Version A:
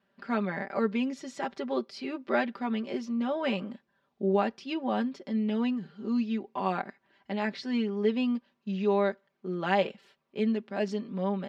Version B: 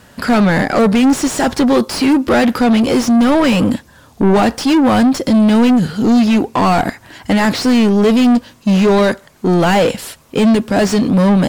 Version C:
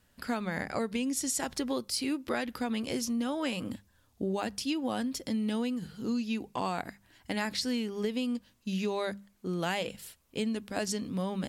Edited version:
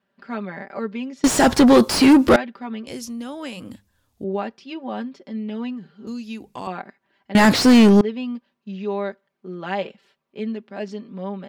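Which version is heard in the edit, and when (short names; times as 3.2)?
A
1.24–2.36 from B
2.87–4.24 from C
6.07–6.67 from C
7.35–8.01 from B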